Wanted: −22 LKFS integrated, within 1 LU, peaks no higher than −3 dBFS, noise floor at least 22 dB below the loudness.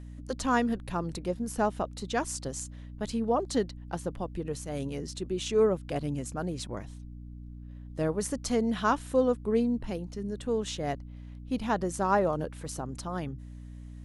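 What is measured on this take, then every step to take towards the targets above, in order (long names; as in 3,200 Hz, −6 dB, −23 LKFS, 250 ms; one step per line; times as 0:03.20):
mains hum 60 Hz; hum harmonics up to 300 Hz; level of the hum −41 dBFS; integrated loudness −31.0 LKFS; sample peak −13.0 dBFS; target loudness −22.0 LKFS
→ mains-hum notches 60/120/180/240/300 Hz
level +9 dB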